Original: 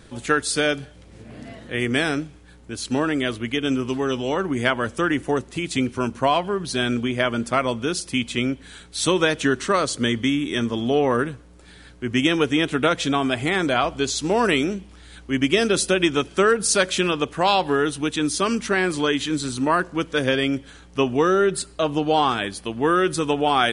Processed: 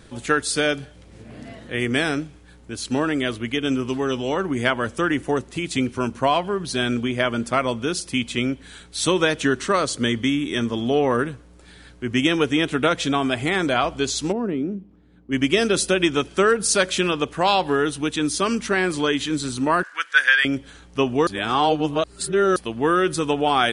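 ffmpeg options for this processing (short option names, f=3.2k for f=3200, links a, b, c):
-filter_complex "[0:a]asplit=3[a][b][c];[a]afade=t=out:st=14.31:d=0.02[d];[b]bandpass=f=220:t=q:w=1.2,afade=t=in:st=14.31:d=0.02,afade=t=out:st=15.31:d=0.02[e];[c]afade=t=in:st=15.31:d=0.02[f];[d][e][f]amix=inputs=3:normalize=0,asettb=1/sr,asplit=3[g][h][i];[g]atrim=end=19.834[j];[h]atrim=start=19.83:end=20.45,asetpts=PTS-STARTPTS,afade=t=in:d=0.004:c=qsin,afade=t=out:st=0.616:d=0.004:c=qsin,highpass=f=1.6k:t=q:w=4.8[k];[i]atrim=start=20.446[l];[j][k]acrossfade=d=0.004:c1=hsin:c2=qsin[m];[m][l]acrossfade=d=0.004:c1=qsin:c2=hsin,asplit=3[n][o][p];[n]atrim=end=21.272[q];[o]atrim=start=21.268:end=22.562,asetpts=PTS-STARTPTS,areverse[r];[p]atrim=start=22.558[s];[q][r]acrossfade=d=0.004:c1=hsin:c2=hsin[t];[t][s]acrossfade=d=0.004:c1=hsin:c2=hsin"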